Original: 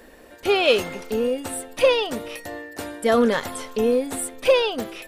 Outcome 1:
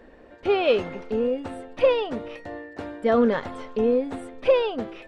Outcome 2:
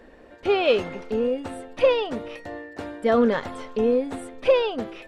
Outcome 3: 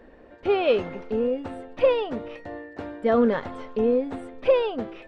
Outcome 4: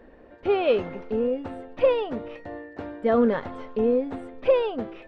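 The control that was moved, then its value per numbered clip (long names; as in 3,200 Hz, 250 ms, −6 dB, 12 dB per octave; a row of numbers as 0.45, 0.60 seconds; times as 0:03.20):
head-to-tape spacing loss, at 10 kHz: 29, 21, 38, 46 decibels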